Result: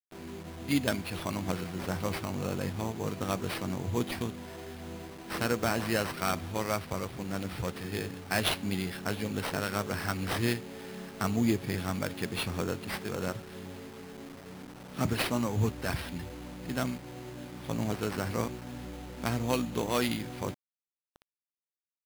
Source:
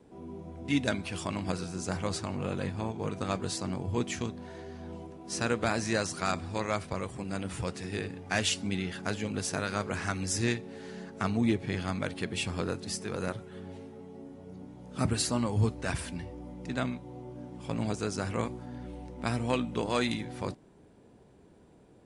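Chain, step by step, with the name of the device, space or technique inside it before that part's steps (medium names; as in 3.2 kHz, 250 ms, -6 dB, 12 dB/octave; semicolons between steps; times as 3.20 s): 14.40–15.68 s: high-pass 86 Hz 6 dB/octave; early 8-bit sampler (sample-rate reducer 6.9 kHz, jitter 0%; bit crusher 8-bit)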